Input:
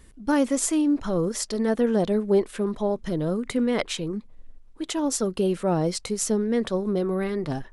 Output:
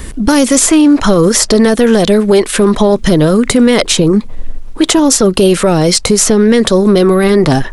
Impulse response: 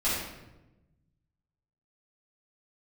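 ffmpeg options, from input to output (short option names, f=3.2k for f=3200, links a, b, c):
-filter_complex "[0:a]acrossover=split=590|1400|3900[a][b][c][d];[a]acompressor=threshold=-34dB:ratio=4[e];[b]acompressor=threshold=-45dB:ratio=4[f];[c]acompressor=threshold=-49dB:ratio=4[g];[d]acompressor=threshold=-38dB:ratio=4[h];[e][f][g][h]amix=inputs=4:normalize=0,apsyclip=29dB,volume=-2dB"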